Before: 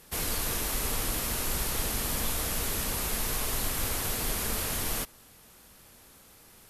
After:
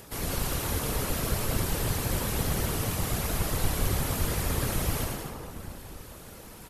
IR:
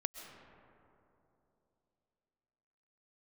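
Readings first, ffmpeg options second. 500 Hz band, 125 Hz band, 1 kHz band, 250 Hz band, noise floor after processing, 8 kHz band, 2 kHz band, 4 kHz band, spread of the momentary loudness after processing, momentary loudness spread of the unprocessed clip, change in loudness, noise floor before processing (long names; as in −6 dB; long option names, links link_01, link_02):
+4.5 dB, +8.5 dB, +2.0 dB, +5.5 dB, −46 dBFS, −2.5 dB, 0.0 dB, −1.5 dB, 14 LU, 0 LU, 0.0 dB, −56 dBFS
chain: -filter_complex "[0:a]tiltshelf=frequency=1300:gain=3,asplit=2[link_01][link_02];[link_02]acompressor=mode=upward:threshold=-30dB:ratio=2.5,volume=-2dB[link_03];[link_01][link_03]amix=inputs=2:normalize=0,aecho=1:1:110|192.5|254.4|300.8|335.6:0.631|0.398|0.251|0.158|0.1[link_04];[1:a]atrim=start_sample=2205[link_05];[link_04][link_05]afir=irnorm=-1:irlink=0,afftfilt=real='hypot(re,im)*cos(2*PI*random(0))':imag='hypot(re,im)*sin(2*PI*random(1))':win_size=512:overlap=0.75"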